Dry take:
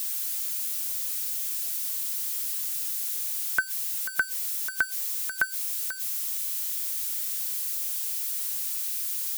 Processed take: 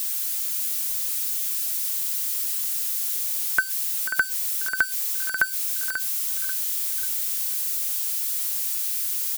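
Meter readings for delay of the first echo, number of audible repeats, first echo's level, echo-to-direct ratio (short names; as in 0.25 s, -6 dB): 0.539 s, 3, -9.0 dB, -8.0 dB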